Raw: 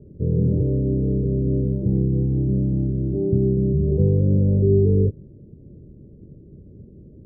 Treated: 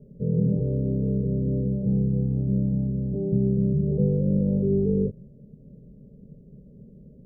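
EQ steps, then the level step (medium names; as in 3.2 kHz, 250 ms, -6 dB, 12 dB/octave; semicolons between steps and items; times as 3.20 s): static phaser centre 330 Hz, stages 6; 0.0 dB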